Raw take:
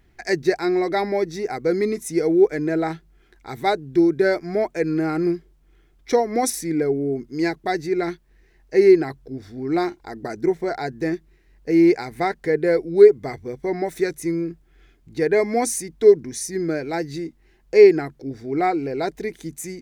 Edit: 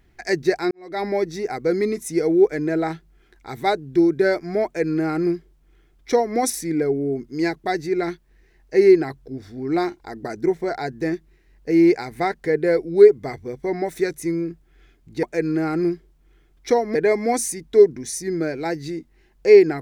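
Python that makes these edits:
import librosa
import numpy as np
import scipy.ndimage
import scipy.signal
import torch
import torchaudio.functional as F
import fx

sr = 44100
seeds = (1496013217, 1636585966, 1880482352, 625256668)

y = fx.edit(x, sr, fx.fade_in_span(start_s=0.71, length_s=0.35, curve='qua'),
    fx.duplicate(start_s=4.65, length_s=1.72, to_s=15.23), tone=tone)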